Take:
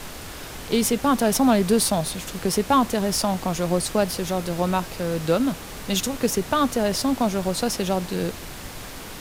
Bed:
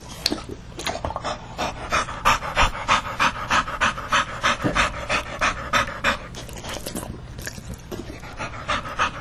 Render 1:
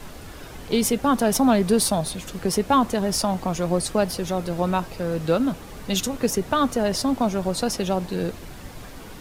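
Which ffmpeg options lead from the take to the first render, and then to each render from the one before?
-af "afftdn=nr=8:nf=-37"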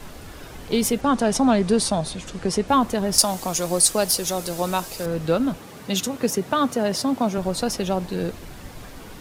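-filter_complex "[0:a]asettb=1/sr,asplit=3[a][b][c];[a]atrim=end=1.014[d];[b]atrim=start=1.01:end=2.68,asetpts=PTS-STARTPTS,afade=t=in:d=0.004:c=qsin,afade=t=out:st=1.666:d=0.004:c=qsin,lowpass=f=9.3k:w=0.5412,lowpass=f=9.3k:w=1.3066[e];[c]atrim=start=2.676[f];[d][e]acrossfade=d=0.004:c1=hsin:c2=qsin[g];[g][f]acrossfade=d=0.004:c1=qsin:c2=hsin,asettb=1/sr,asplit=3[h][i][j];[h]atrim=end=3.184[k];[i]atrim=start=3.18:end=5.06,asetpts=PTS-STARTPTS,afade=t=in:d=0.004:c=qsin,afade=t=out:st=1.876:d=0.004:c=qsin,bass=f=250:g=-6,treble=f=4k:g=14[l];[j]atrim=start=5.056[m];[k][l]acrossfade=d=0.004:c1=hsin:c2=qsin[n];[n][m]acrossfade=d=0.004:c1=qsin:c2=hsin,asettb=1/sr,asplit=3[o][p][q];[o]atrim=end=5.584[r];[p]atrim=start=5.58:end=7.38,asetpts=PTS-STARTPTS,afade=t=in:d=0.004:c=qsin,afade=t=out:st=1.796:d=0.004:c=qsin,highpass=f=100:w=0.5412,highpass=f=100:w=1.3066[s];[q]atrim=start=7.376[t];[r][s]acrossfade=d=0.004:c1=hsin:c2=qsin[u];[u][t]acrossfade=d=0.004:c1=qsin:c2=hsin"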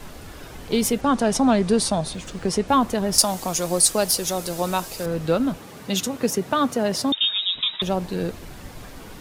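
-filter_complex "[0:a]asettb=1/sr,asplit=3[a][b][c];[a]atrim=end=2.134[d];[b]atrim=start=2.13:end=2.58,asetpts=PTS-STARTPTS,afade=t=in:d=0.004:c=qsin,afade=t=out:st=0.446:d=0.004:c=qsin,acrusher=bits=8:mix=0:aa=0.5[e];[c]atrim=start=2.576[f];[d][e]acrossfade=d=0.004:c1=hsin:c2=qsin[g];[g][f]acrossfade=d=0.004:c1=qsin:c2=hsin,asettb=1/sr,asplit=3[h][i][j];[h]atrim=end=7.124[k];[i]atrim=start=7.12:end=7.82,asetpts=PTS-STARTPTS,afade=t=in:d=0.004:c=qsin,afade=t=out:st=0.696:d=0.004:c=qsin,lowpass=f=3.3k:t=q:w=0.5098,lowpass=f=3.3k:t=q:w=0.6013,lowpass=f=3.3k:t=q:w=0.9,lowpass=f=3.3k:t=q:w=2.563,afreqshift=-3900[l];[j]atrim=start=7.816[m];[k][l]acrossfade=d=0.004:c1=hsin:c2=qsin[n];[n][m]acrossfade=d=0.004:c1=qsin:c2=hsin"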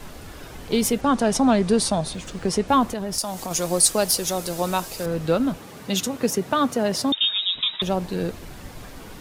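-filter_complex "[0:a]asettb=1/sr,asplit=3[a][b][c];[a]atrim=end=2.894[d];[b]atrim=start=2.89:end=3.51,asetpts=PTS-STARTPTS,afade=t=in:d=0.004:c=qsin,afade=t=out:st=0.616:d=0.004:c=qsin,acompressor=threshold=-28dB:ratio=2:attack=3.2:release=140:knee=1:detection=peak[e];[c]atrim=start=3.506[f];[d][e]acrossfade=d=0.004:c1=hsin:c2=qsin[g];[g][f]acrossfade=d=0.004:c1=qsin:c2=hsin"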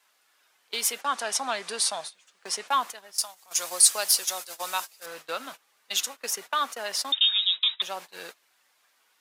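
-af "agate=range=-20dB:threshold=-26dB:ratio=16:detection=peak,highpass=1.2k"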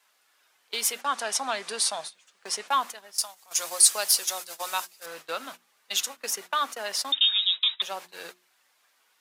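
-af "bandreject=f=60:t=h:w=6,bandreject=f=120:t=h:w=6,bandreject=f=180:t=h:w=6,bandreject=f=240:t=h:w=6,bandreject=f=300:t=h:w=6,bandreject=f=360:t=h:w=6"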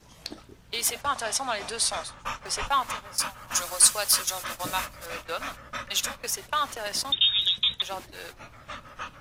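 -filter_complex "[1:a]volume=-15.5dB[a];[0:a][a]amix=inputs=2:normalize=0"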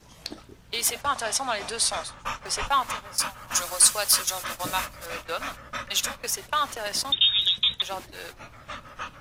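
-af "volume=1.5dB,alimiter=limit=-3dB:level=0:latency=1"

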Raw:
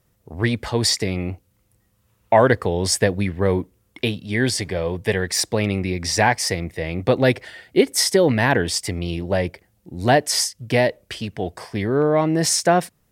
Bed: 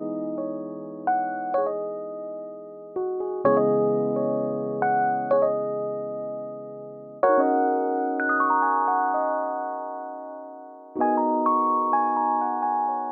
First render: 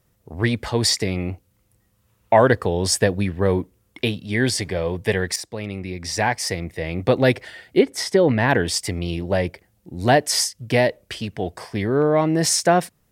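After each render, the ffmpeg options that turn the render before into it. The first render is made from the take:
-filter_complex "[0:a]asettb=1/sr,asplit=3[a][b][c];[a]atrim=end=2.384[d];[b]atrim=start=2.38:end=3.58,asetpts=PTS-STARTPTS,afade=t=in:d=0.004:c=qsin,afade=t=out:st=1.196:d=0.004:c=qsin,bandreject=f=2.1k:w=11[e];[c]atrim=start=3.576[f];[d][e]acrossfade=d=0.004:c1=hsin:c2=qsin[g];[g][f]acrossfade=d=0.004:c1=qsin:c2=hsin,asettb=1/sr,asplit=3[h][i][j];[h]atrim=end=7.794[k];[i]atrim=start=7.79:end=8.49,asetpts=PTS-STARTPTS,afade=t=in:d=0.004:c=qsin,afade=t=out:st=0.696:d=0.004:c=qsin,lowpass=f=2.4k:p=1[l];[j]atrim=start=8.486[m];[k][l]acrossfade=d=0.004:c1=hsin:c2=qsin[n];[n][m]acrossfade=d=0.004:c1=qsin:c2=hsin,asplit=2[o][p];[o]atrim=end=5.36,asetpts=PTS-STARTPTS,afade=t=out:st=5.356:d=0.004:c=hsin:silence=0.237137[q];[p]atrim=start=5.36,asetpts=PTS-STARTPTS,afade=t=in:d=1.66:silence=0.237137[r];[q][r]concat=n=2:v=0:a=1"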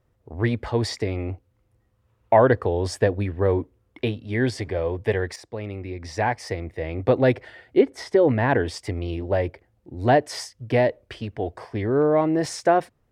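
-af "lowpass=f=1.2k:p=1,equalizer=f=180:w=4.3:g=-14"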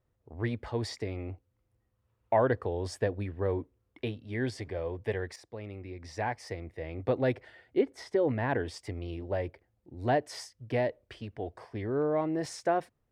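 -af "volume=-9.5dB"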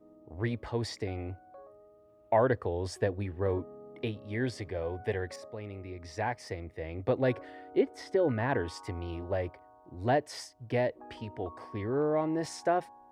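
-filter_complex "[1:a]volume=-27.5dB[a];[0:a][a]amix=inputs=2:normalize=0"

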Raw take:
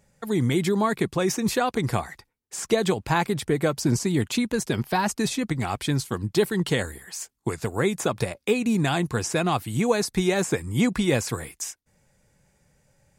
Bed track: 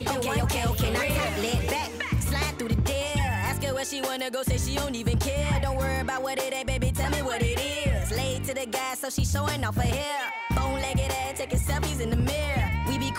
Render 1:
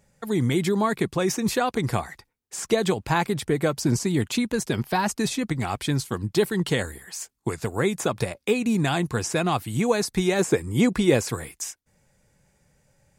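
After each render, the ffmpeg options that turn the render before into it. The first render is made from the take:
-filter_complex "[0:a]asettb=1/sr,asplit=3[a][b][c];[a]atrim=end=10.394[d];[b]atrim=start=10.39:end=11.3,asetpts=PTS-STARTPTS,afade=t=in:d=0.004:c=qsin,afade=t=out:st=0.906:d=0.004:c=qsin,equalizer=f=400:t=o:w=1:g=5.5[e];[c]atrim=start=11.296[f];[d][e]acrossfade=d=0.004:c1=hsin:c2=qsin[g];[g][f]acrossfade=d=0.004:c1=qsin:c2=hsin"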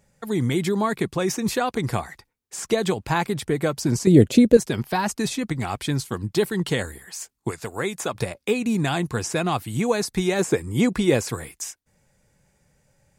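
-filter_complex "[0:a]asettb=1/sr,asplit=3[a][b][c];[a]atrim=end=4.074[d];[b]atrim=start=4.07:end=4.57,asetpts=PTS-STARTPTS,afade=t=in:d=0.004:c=qsin,afade=t=out:st=0.496:d=0.004:c=qsin,lowshelf=f=730:t=q:w=3:g=9[e];[c]atrim=start=4.566[f];[d][e]acrossfade=d=0.004:c1=hsin:c2=qsin[g];[g][f]acrossfade=d=0.004:c1=qsin:c2=hsin,asettb=1/sr,asplit=3[h][i][j];[h]atrim=end=7.514[k];[i]atrim=start=7.51:end=8.15,asetpts=PTS-STARTPTS,afade=t=in:d=0.004:c=qsin,afade=t=out:st=0.636:d=0.004:c=qsin,lowshelf=f=380:g=-8[l];[j]atrim=start=8.146[m];[k][l]acrossfade=d=0.004:c1=hsin:c2=qsin[n];[n][m]acrossfade=d=0.004:c1=qsin:c2=hsin"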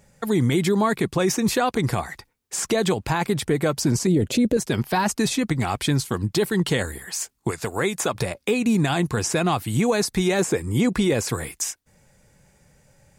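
-filter_complex "[0:a]asplit=2[a][b];[b]acompressor=threshold=-29dB:ratio=6,volume=1dB[c];[a][c]amix=inputs=2:normalize=0,alimiter=limit=-12dB:level=0:latency=1:release=12"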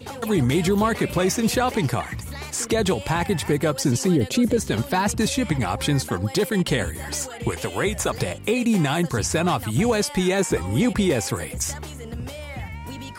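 -filter_complex "[1:a]volume=-7.5dB[a];[0:a][a]amix=inputs=2:normalize=0"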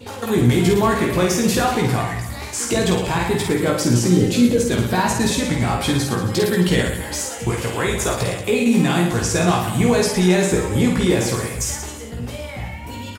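-filter_complex "[0:a]asplit=2[a][b];[b]adelay=17,volume=-4dB[c];[a][c]amix=inputs=2:normalize=0,aecho=1:1:50|110|182|268.4|372.1:0.631|0.398|0.251|0.158|0.1"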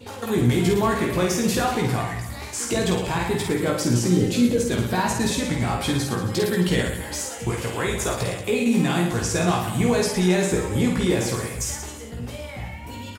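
-af "volume=-4dB"

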